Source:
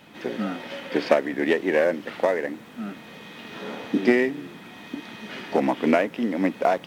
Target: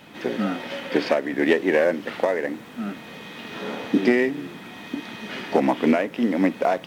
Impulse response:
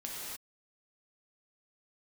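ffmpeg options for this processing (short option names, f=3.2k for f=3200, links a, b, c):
-filter_complex "[0:a]alimiter=limit=-10.5dB:level=0:latency=1:release=304,asplit=2[a][b];[1:a]atrim=start_sample=2205,atrim=end_sample=3087[c];[b][c]afir=irnorm=-1:irlink=0,volume=-14.5dB[d];[a][d]amix=inputs=2:normalize=0,volume=2.5dB"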